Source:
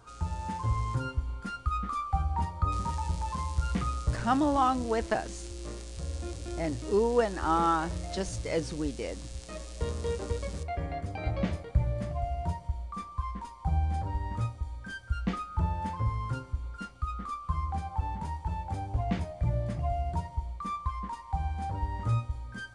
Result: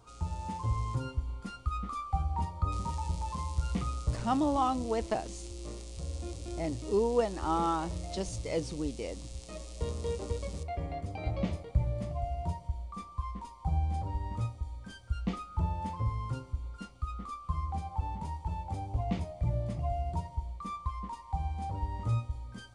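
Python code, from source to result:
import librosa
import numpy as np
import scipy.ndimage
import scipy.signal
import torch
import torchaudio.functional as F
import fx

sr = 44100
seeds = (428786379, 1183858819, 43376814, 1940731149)

y = fx.peak_eq(x, sr, hz=1600.0, db=-10.5, octaves=0.49)
y = y * 10.0 ** (-2.0 / 20.0)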